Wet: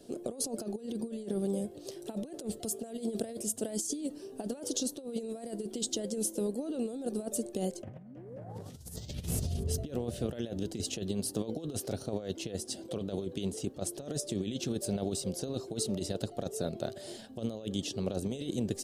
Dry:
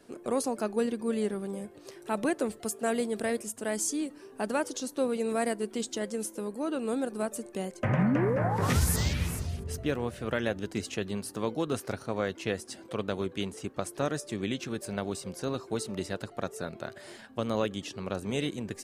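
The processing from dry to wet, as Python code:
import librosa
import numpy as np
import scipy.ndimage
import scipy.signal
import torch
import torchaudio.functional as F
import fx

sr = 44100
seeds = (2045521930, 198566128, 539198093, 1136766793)

y = fx.over_compress(x, sr, threshold_db=-34.0, ratio=-0.5)
y = fx.band_shelf(y, sr, hz=1500.0, db=-13.0, octaves=1.7)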